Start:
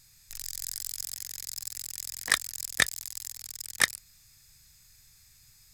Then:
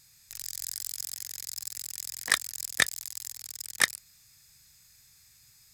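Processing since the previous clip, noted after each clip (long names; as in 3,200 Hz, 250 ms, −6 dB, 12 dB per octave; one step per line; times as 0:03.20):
high-pass filter 120 Hz 6 dB per octave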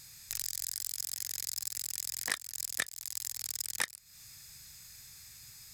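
downward compressor 8 to 1, threshold −38 dBFS, peak gain reduction 21.5 dB
level +7 dB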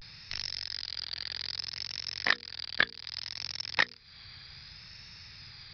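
mains-hum notches 60/120/180/240/300/360/420/480 Hz
downsampling to 11,025 Hz
pitch vibrato 0.64 Hz 99 cents
level +9 dB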